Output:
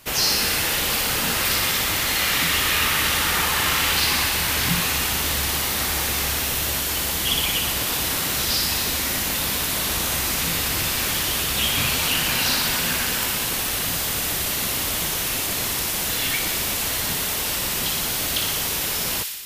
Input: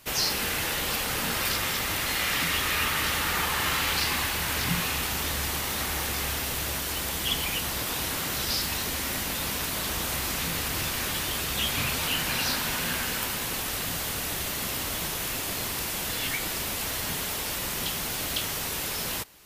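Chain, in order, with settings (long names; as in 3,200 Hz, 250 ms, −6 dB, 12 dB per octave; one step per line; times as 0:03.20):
delay with a high-pass on its return 60 ms, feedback 73%, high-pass 2,600 Hz, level −3.5 dB
level +4.5 dB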